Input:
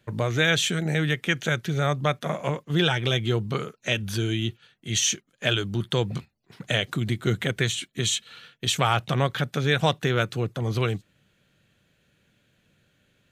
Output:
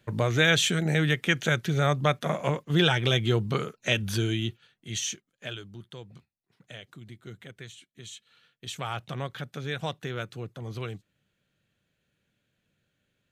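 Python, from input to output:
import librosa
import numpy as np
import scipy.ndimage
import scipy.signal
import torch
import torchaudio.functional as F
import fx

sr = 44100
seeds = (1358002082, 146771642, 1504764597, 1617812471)

y = fx.gain(x, sr, db=fx.line((4.14, 0.0), (5.13, -9.0), (5.99, -19.5), (8.02, -19.5), (8.97, -10.5)))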